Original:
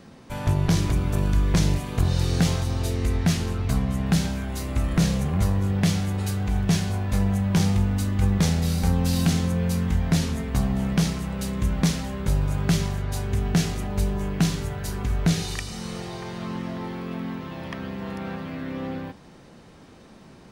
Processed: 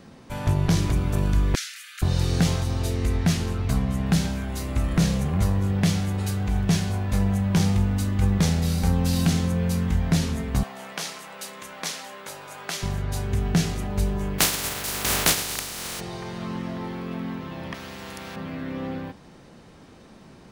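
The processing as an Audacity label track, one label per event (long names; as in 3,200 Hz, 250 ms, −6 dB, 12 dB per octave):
1.550000	2.020000	Butterworth high-pass 1,300 Hz 96 dB per octave
10.630000	12.830000	high-pass filter 660 Hz
14.380000	15.990000	compressing power law on the bin magnitudes exponent 0.25
17.740000	18.360000	every bin compressed towards the loudest bin 2 to 1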